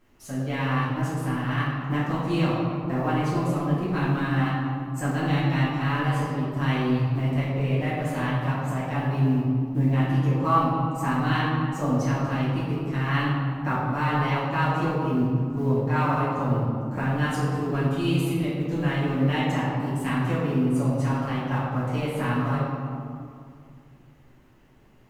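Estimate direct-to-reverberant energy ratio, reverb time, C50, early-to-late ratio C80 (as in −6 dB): −10.5 dB, 2.3 s, −1.5 dB, 1.0 dB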